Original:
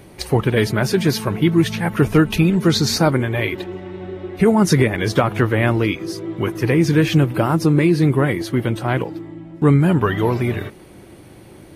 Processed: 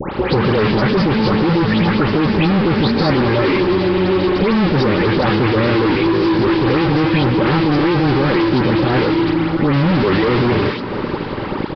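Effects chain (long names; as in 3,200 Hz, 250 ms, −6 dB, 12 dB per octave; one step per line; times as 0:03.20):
high-pass filter 280 Hz 12 dB per octave
spectral tilt −4.5 dB per octave
compressor whose output falls as the input rises −11 dBFS, ratio −0.5
fuzz pedal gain 31 dB, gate −35 dBFS
Butterworth band-reject 680 Hz, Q 6.7
all-pass dispersion highs, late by 137 ms, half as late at 2,000 Hz
on a send at −14 dB: convolution reverb RT60 4.3 s, pre-delay 100 ms
on the sum: downsampling to 11,025 Hz
multiband upward and downward compressor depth 70%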